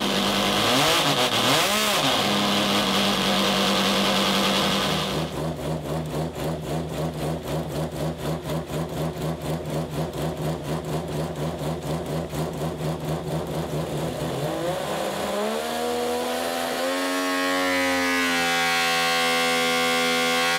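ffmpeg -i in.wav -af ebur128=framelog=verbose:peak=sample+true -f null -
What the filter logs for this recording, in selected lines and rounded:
Integrated loudness:
  I:         -23.3 LUFS
  Threshold: -33.3 LUFS
Loudness range:
  LRA:         8.6 LU
  Threshold: -44.1 LUFS
  LRA low:   -28.6 LUFS
  LRA high:  -19.9 LUFS
Sample peak:
  Peak:      -14.0 dBFS
True peak:
  Peak:      -14.0 dBFS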